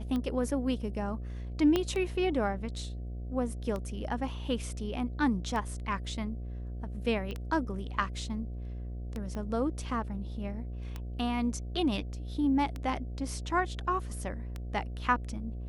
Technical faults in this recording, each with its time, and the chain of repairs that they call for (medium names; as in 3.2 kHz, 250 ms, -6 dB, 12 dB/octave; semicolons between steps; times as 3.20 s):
buzz 60 Hz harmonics 12 -38 dBFS
tick 33 1/3 rpm -23 dBFS
1.76 s: pop -14 dBFS
7.31 s: pop -26 dBFS
9.35 s: pop -27 dBFS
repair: de-click; de-hum 60 Hz, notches 12